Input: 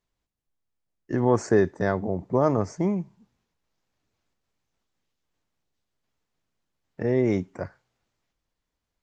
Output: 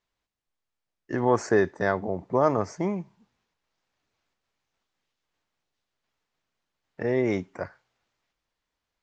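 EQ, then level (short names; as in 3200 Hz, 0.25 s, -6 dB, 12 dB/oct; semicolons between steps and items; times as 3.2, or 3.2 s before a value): air absorption 71 m; low shelf 450 Hz -10.5 dB; +4.5 dB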